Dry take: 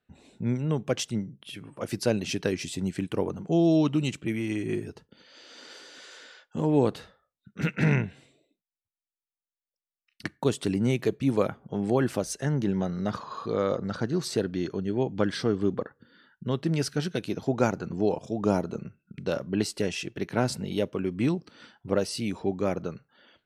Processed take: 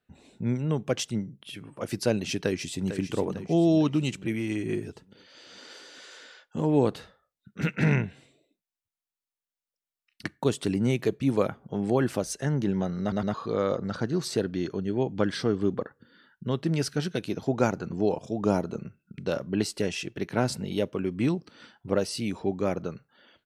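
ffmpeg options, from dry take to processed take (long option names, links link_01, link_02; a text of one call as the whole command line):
ffmpeg -i in.wav -filter_complex "[0:a]asplit=2[link_01][link_02];[link_02]afade=type=in:start_time=2.37:duration=0.01,afade=type=out:start_time=2.88:duration=0.01,aecho=0:1:450|900|1350|1800|2250|2700:0.334965|0.184231|0.101327|0.0557299|0.0306514|0.0168583[link_03];[link_01][link_03]amix=inputs=2:normalize=0,asplit=4[link_04][link_05][link_06][link_07];[link_04]atrim=end=13.122[link_08];[link_05]atrim=start=13.008:end=13.122[link_09];[link_06]atrim=start=13.008:end=13.122[link_10];[link_07]atrim=start=13.338[link_11];[link_08][link_09]acrossfade=duration=0.004:curve1=hsin:curve2=hsin[link_12];[link_12][link_10]acrossfade=duration=0.004:curve1=hsin:curve2=hsin[link_13];[link_13][link_11]acrossfade=duration=0.004:curve1=hsin:curve2=hsin" out.wav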